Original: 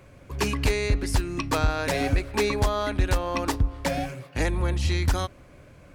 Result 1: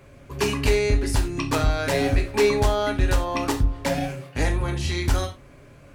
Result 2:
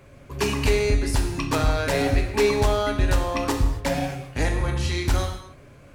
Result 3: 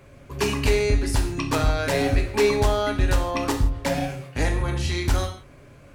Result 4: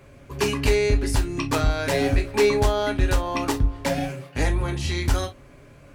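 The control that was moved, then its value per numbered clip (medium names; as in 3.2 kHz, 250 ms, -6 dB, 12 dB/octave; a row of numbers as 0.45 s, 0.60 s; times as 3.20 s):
gated-style reverb, gate: 120 ms, 300 ms, 190 ms, 80 ms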